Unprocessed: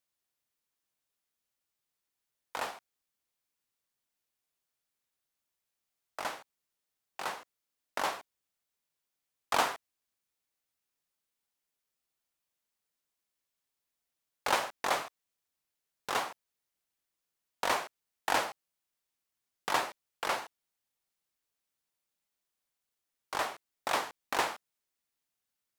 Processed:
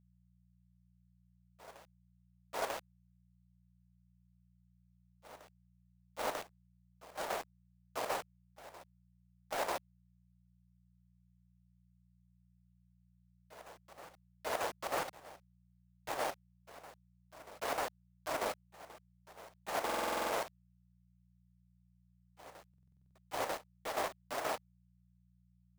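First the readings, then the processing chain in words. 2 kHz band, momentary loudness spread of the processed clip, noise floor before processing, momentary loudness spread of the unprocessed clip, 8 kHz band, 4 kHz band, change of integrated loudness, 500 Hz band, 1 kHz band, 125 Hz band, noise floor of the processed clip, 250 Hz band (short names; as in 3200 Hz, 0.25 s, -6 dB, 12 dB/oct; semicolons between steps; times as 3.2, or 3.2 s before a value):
-6.5 dB, 20 LU, under -85 dBFS, 16 LU, -4.5 dB, -7.0 dB, -5.0 dB, 0.0 dB, -5.0 dB, +1.0 dB, -70 dBFS, -1.5 dB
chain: inharmonic rescaling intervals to 76%; LPF 2300 Hz 12 dB/oct; reverse; compressor 8:1, threshold -41 dBFS, peak gain reduction 16 dB; reverse; flange 1.8 Hz, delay 5.9 ms, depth 6 ms, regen -23%; companded quantiser 4-bit; chopper 6.3 Hz, depth 60%, duty 70%; on a send: reverse echo 0.943 s -17.5 dB; on the sum: buzz 60 Hz, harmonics 3, -80 dBFS -1 dB/oct; stuck buffer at 19.85/22.69, samples 2048, times 9; gain +11 dB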